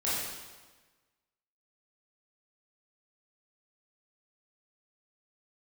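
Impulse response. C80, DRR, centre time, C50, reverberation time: 1.0 dB, -9.5 dB, 94 ms, -1.5 dB, 1.3 s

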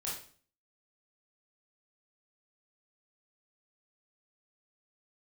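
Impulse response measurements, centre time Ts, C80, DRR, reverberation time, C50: 42 ms, 8.5 dB, -6.0 dB, 0.45 s, 3.0 dB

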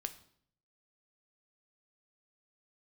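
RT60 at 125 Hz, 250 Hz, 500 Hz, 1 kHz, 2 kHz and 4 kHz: 0.90 s, 0.75 s, 0.65 s, 0.60 s, 0.55 s, 0.55 s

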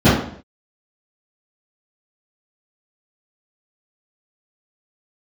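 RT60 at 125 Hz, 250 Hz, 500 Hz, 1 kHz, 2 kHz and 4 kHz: 0.65 s, 0.55 s, 0.60 s, 0.55 s, 0.55 s, 0.50 s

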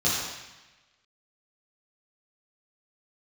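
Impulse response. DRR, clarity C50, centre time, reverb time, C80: -9.5 dB, -0.5 dB, 82 ms, 1.1 s, 2.0 dB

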